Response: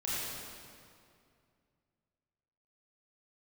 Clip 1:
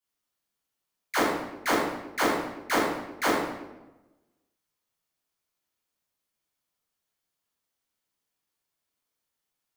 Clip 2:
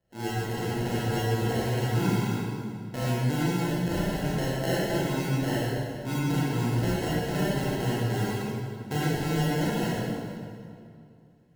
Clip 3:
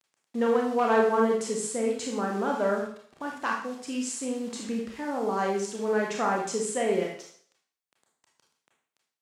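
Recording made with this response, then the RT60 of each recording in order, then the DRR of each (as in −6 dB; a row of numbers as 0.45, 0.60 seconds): 2; 1.1, 2.4, 0.55 seconds; −10.5, −8.5, −1.0 decibels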